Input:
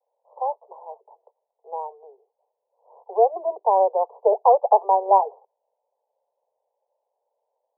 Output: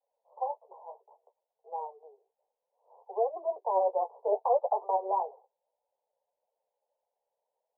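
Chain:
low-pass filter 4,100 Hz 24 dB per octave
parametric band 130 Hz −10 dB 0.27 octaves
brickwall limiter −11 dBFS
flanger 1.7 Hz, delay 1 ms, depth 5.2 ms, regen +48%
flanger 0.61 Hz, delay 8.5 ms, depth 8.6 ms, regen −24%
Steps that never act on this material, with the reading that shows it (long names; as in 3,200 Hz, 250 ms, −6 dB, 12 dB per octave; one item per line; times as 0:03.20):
low-pass filter 4,100 Hz: nothing at its input above 1,200 Hz
parametric band 130 Hz: nothing at its input below 340 Hz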